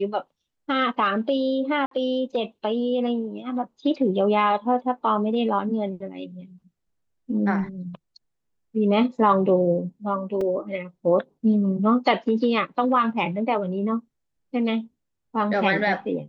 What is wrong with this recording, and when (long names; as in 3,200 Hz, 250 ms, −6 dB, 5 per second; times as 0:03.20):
0:01.86–0:01.91: drop-out 53 ms
0:10.41: drop-out 3.2 ms